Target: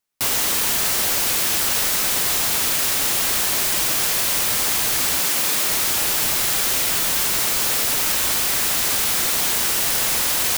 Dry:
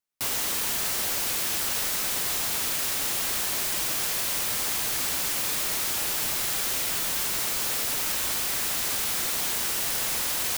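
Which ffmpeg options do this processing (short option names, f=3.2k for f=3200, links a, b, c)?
-filter_complex "[0:a]asettb=1/sr,asplit=3[a][b][c];[a]atrim=end=5.214[d];[b]atrim=start=5.21:end=5.69,asetpts=PTS-STARTPTS,afade=t=in:d=0.004:c=qsin,afade=t=out:st=0.476:d=0.004:c=qsin,highpass=140[e];[c]atrim=start=5.686[f];[d][e]acrossfade=d=0.004:c1=hsin:c2=qsin[g];[g][f]acrossfade=d=0.004:c1=qsin:c2=hsin,volume=7.5dB"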